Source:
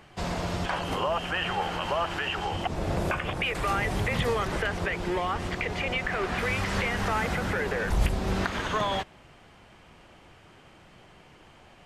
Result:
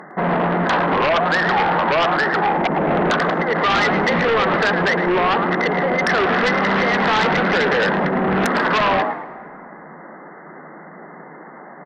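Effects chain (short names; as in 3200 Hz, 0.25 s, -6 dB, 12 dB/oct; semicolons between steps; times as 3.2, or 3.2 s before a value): air absorption 240 m; FFT band-pass 140–2100 Hz; frequency-shifting echo 0.109 s, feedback 34%, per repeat +58 Hz, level -9 dB; in parallel at -3 dB: sine folder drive 16 dB, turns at -11.5 dBFS; on the sum: low shelf 270 Hz -4.5 dB; on a send at -20.5 dB: reverb RT60 3.3 s, pre-delay 98 ms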